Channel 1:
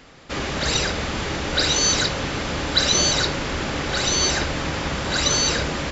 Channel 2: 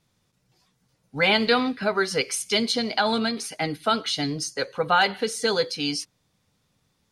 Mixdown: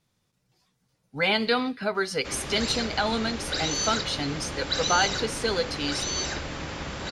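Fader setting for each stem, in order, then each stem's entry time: −9.0, −3.5 decibels; 1.95, 0.00 seconds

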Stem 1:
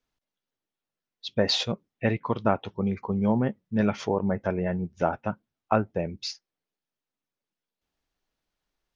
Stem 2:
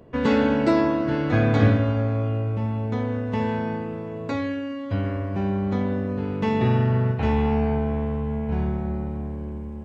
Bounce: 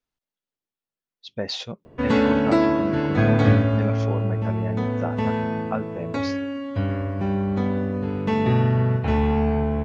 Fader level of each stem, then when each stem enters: −5.0, +1.0 decibels; 0.00, 1.85 seconds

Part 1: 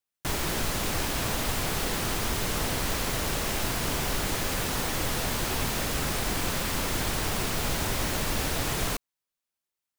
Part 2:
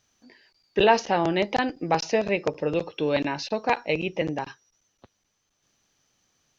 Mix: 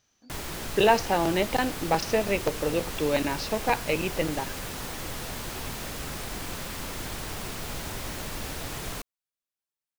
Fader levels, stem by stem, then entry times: −6.5, −1.5 decibels; 0.05, 0.00 seconds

